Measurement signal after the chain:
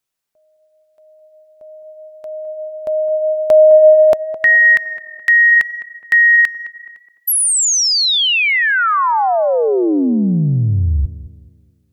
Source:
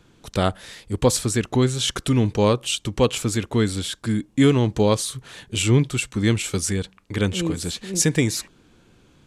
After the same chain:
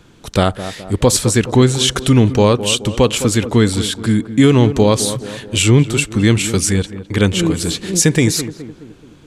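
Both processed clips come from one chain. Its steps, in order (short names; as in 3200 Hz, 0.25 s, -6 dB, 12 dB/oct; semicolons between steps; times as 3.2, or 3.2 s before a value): tape echo 0.211 s, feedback 57%, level -11 dB, low-pass 1100 Hz; maximiser +9 dB; gain -1 dB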